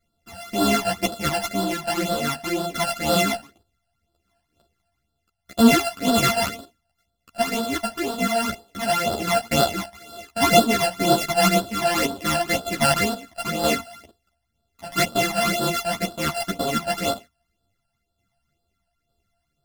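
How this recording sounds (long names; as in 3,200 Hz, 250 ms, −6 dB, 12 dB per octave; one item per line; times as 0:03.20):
a buzz of ramps at a fixed pitch in blocks of 64 samples
phaser sweep stages 12, 2 Hz, lowest notch 360–2,200 Hz
tremolo saw down 1.1 Hz, depth 40%
a shimmering, thickened sound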